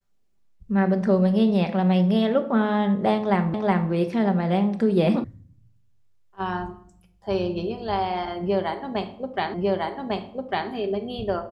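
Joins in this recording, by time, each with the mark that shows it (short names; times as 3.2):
3.54 repeat of the last 0.37 s
5.24 sound cut off
9.54 repeat of the last 1.15 s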